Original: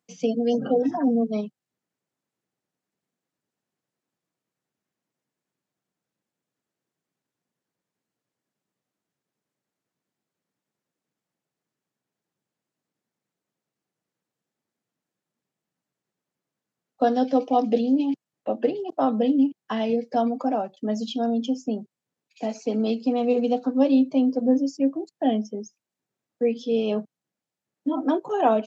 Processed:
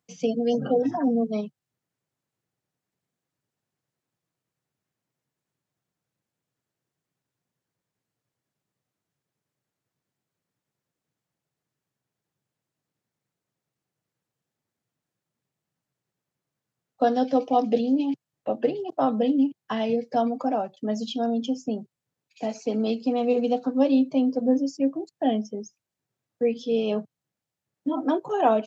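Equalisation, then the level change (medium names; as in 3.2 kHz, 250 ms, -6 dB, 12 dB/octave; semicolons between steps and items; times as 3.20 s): resonant low shelf 160 Hz +6.5 dB, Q 1.5; 0.0 dB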